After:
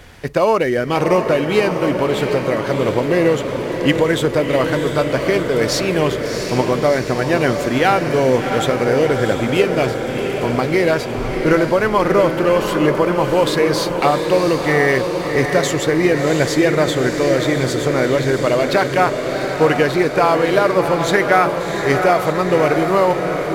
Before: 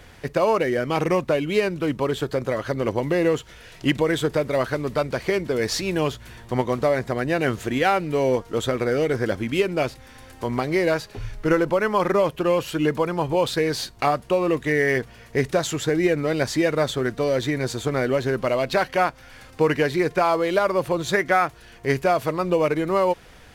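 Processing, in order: echo that smears into a reverb 699 ms, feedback 67%, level -6 dB; trim +5 dB

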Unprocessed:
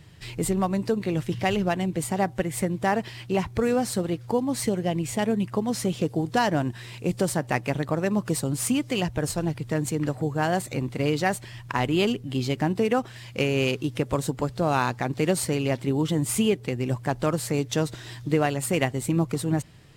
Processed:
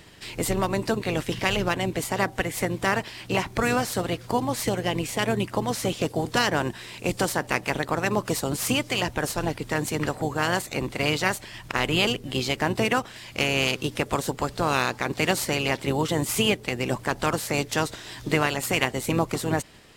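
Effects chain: spectral peaks clipped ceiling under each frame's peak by 16 dB

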